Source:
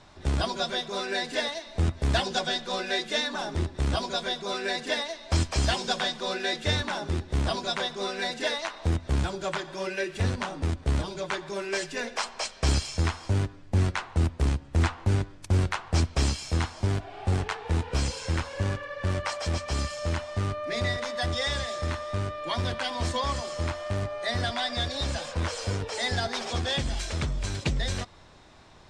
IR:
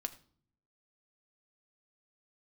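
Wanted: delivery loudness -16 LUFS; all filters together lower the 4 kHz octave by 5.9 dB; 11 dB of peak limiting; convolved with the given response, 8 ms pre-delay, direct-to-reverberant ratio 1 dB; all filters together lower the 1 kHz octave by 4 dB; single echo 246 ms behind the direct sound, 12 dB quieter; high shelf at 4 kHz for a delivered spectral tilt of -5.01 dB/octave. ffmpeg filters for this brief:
-filter_complex "[0:a]equalizer=f=1000:t=o:g=-5,highshelf=f=4000:g=-4,equalizer=f=4000:t=o:g=-4.5,alimiter=level_in=1.33:limit=0.0631:level=0:latency=1,volume=0.75,aecho=1:1:246:0.251,asplit=2[s0][s1];[1:a]atrim=start_sample=2205,adelay=8[s2];[s1][s2]afir=irnorm=-1:irlink=0,volume=1[s3];[s0][s3]amix=inputs=2:normalize=0,volume=7.5"

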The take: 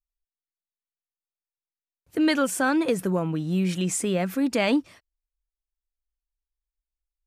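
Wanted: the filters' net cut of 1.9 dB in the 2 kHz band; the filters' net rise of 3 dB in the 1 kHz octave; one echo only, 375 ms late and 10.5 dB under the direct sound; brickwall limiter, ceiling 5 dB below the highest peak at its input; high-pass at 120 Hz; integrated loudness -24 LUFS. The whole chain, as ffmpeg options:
-af "highpass=120,equalizer=f=1000:t=o:g=5.5,equalizer=f=2000:t=o:g=-5,alimiter=limit=0.178:level=0:latency=1,aecho=1:1:375:0.299,volume=1.19"

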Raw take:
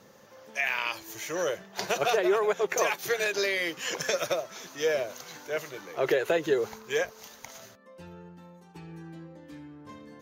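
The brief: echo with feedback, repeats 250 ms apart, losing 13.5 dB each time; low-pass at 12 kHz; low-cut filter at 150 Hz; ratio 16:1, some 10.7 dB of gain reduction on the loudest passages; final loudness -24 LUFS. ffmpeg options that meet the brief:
-af "highpass=150,lowpass=12000,acompressor=threshold=0.0282:ratio=16,aecho=1:1:250|500:0.211|0.0444,volume=4.47"

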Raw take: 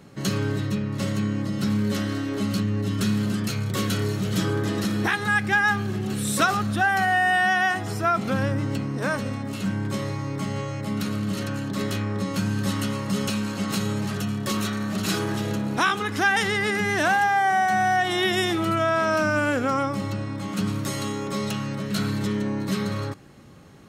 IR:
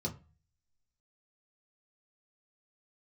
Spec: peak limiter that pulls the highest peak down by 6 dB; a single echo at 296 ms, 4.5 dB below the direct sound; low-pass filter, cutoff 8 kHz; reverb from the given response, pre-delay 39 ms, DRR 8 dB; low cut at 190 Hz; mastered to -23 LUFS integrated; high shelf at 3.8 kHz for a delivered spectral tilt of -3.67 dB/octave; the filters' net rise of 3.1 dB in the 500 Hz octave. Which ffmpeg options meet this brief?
-filter_complex "[0:a]highpass=190,lowpass=8000,equalizer=f=500:t=o:g=4.5,highshelf=f=3800:g=-3,alimiter=limit=0.211:level=0:latency=1,aecho=1:1:296:0.596,asplit=2[s0][s1];[1:a]atrim=start_sample=2205,adelay=39[s2];[s1][s2]afir=irnorm=-1:irlink=0,volume=0.335[s3];[s0][s3]amix=inputs=2:normalize=0"

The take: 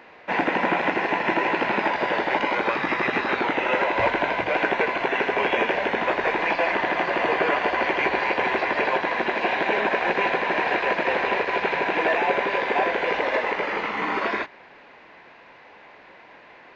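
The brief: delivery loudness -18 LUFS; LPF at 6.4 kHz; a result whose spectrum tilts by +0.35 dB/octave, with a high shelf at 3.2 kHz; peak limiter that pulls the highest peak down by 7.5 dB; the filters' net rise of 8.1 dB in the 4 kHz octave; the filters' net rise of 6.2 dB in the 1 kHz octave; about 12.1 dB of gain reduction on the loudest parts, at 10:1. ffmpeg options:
-af "lowpass=6400,equalizer=f=1000:t=o:g=6.5,highshelf=f=3200:g=5.5,equalizer=f=4000:t=o:g=7.5,acompressor=threshold=0.0501:ratio=10,volume=4.47,alimiter=limit=0.355:level=0:latency=1"

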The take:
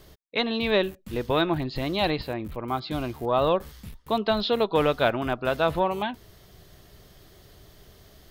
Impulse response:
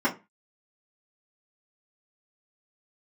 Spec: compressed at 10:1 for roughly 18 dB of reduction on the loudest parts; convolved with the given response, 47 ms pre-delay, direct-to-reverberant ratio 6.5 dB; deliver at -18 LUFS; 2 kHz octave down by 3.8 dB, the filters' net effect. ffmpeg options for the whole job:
-filter_complex "[0:a]equalizer=f=2000:t=o:g=-5.5,acompressor=threshold=0.0141:ratio=10,asplit=2[s0][s1];[1:a]atrim=start_sample=2205,adelay=47[s2];[s1][s2]afir=irnorm=-1:irlink=0,volume=0.106[s3];[s0][s3]amix=inputs=2:normalize=0,volume=13.3"

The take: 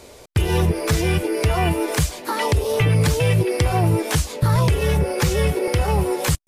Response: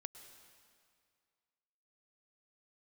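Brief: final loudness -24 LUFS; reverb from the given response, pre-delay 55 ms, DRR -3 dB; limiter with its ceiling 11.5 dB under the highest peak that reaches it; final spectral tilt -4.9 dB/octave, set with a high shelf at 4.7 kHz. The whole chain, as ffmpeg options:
-filter_complex "[0:a]highshelf=f=4700:g=7,alimiter=limit=0.168:level=0:latency=1,asplit=2[s0][s1];[1:a]atrim=start_sample=2205,adelay=55[s2];[s1][s2]afir=irnorm=-1:irlink=0,volume=2.37[s3];[s0][s3]amix=inputs=2:normalize=0,volume=0.562"

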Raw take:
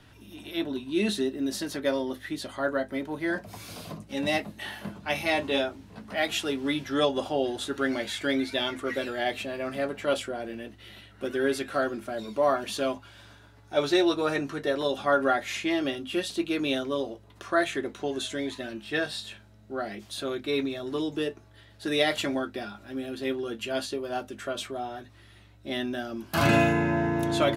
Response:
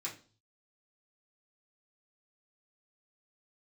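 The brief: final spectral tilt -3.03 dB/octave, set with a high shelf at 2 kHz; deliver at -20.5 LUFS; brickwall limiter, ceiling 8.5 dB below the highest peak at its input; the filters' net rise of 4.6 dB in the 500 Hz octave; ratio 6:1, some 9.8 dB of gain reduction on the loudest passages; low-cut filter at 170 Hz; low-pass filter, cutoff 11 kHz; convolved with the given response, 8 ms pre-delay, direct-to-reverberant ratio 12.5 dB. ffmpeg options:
-filter_complex "[0:a]highpass=170,lowpass=11000,equalizer=f=500:t=o:g=5.5,highshelf=f=2000:g=7,acompressor=threshold=0.0562:ratio=6,alimiter=limit=0.0794:level=0:latency=1,asplit=2[s0][s1];[1:a]atrim=start_sample=2205,adelay=8[s2];[s1][s2]afir=irnorm=-1:irlink=0,volume=0.224[s3];[s0][s3]amix=inputs=2:normalize=0,volume=3.76"

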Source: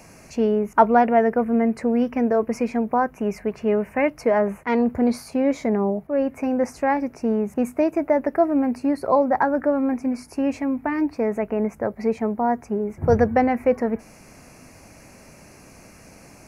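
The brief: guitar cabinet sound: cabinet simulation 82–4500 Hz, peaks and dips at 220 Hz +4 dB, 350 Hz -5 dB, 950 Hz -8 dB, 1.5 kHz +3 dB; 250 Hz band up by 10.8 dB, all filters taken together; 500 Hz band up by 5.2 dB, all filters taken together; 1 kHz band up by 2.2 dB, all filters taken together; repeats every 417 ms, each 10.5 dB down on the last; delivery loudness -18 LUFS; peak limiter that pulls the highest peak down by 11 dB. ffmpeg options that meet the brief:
-af "equalizer=f=250:t=o:g=9,equalizer=f=500:t=o:g=4,equalizer=f=1000:t=o:g=4.5,alimiter=limit=0.422:level=0:latency=1,highpass=82,equalizer=f=220:t=q:w=4:g=4,equalizer=f=350:t=q:w=4:g=-5,equalizer=f=950:t=q:w=4:g=-8,equalizer=f=1500:t=q:w=4:g=3,lowpass=f=4500:w=0.5412,lowpass=f=4500:w=1.3066,aecho=1:1:417|834|1251:0.299|0.0896|0.0269,volume=0.794"

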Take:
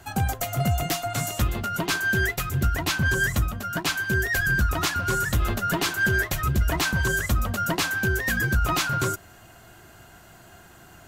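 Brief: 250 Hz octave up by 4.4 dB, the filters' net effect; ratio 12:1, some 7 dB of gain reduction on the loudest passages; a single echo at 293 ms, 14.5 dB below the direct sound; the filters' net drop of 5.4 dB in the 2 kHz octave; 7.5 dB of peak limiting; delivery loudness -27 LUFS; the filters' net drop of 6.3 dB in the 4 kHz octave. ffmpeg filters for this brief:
-af "equalizer=f=250:t=o:g=6.5,equalizer=f=2000:t=o:g=-7,equalizer=f=4000:t=o:g=-6,acompressor=threshold=0.0631:ratio=12,alimiter=limit=0.0794:level=0:latency=1,aecho=1:1:293:0.188,volume=1.58"

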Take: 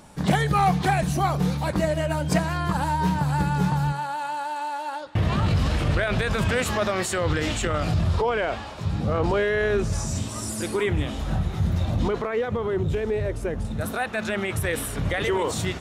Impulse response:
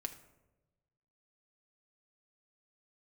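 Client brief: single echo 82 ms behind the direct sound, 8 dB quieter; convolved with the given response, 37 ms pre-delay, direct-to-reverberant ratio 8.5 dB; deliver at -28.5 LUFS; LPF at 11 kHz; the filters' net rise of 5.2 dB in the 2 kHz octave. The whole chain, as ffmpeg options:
-filter_complex "[0:a]lowpass=11000,equalizer=f=2000:t=o:g=6.5,aecho=1:1:82:0.398,asplit=2[s0][s1];[1:a]atrim=start_sample=2205,adelay=37[s2];[s1][s2]afir=irnorm=-1:irlink=0,volume=0.473[s3];[s0][s3]amix=inputs=2:normalize=0,volume=0.501"

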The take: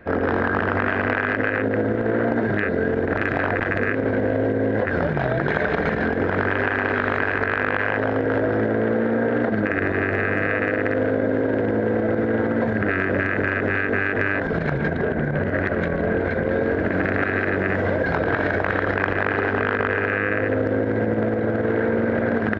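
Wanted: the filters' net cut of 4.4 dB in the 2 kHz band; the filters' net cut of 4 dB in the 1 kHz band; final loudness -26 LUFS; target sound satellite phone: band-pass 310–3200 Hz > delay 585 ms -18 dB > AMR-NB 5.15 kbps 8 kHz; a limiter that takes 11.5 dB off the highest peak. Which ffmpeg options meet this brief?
-af "equalizer=f=1000:t=o:g=-4.5,equalizer=f=2000:t=o:g=-3.5,alimiter=limit=0.106:level=0:latency=1,highpass=310,lowpass=3200,aecho=1:1:585:0.126,volume=2.24" -ar 8000 -c:a libopencore_amrnb -b:a 5150

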